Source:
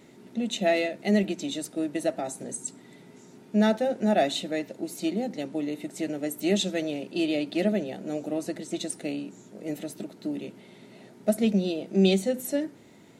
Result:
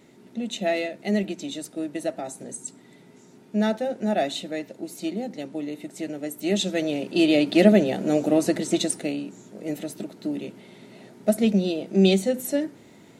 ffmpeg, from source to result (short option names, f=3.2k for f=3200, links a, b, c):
-af "volume=10dB,afade=t=in:st=6.42:d=1.31:silence=0.281838,afade=t=out:st=8.67:d=0.46:silence=0.446684"